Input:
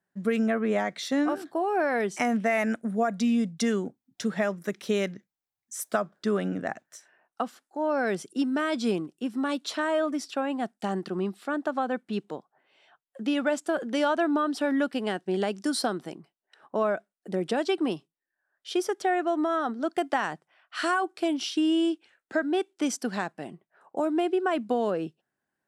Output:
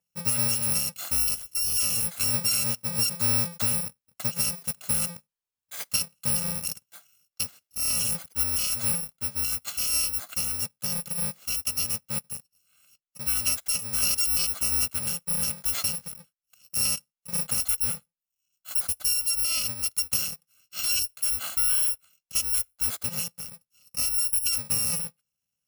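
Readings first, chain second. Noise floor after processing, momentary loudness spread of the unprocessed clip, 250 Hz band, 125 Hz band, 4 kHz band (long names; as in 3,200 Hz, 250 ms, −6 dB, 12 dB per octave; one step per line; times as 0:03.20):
below −85 dBFS, 9 LU, −15.5 dB, +3.5 dB, +8.0 dB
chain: samples in bit-reversed order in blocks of 128 samples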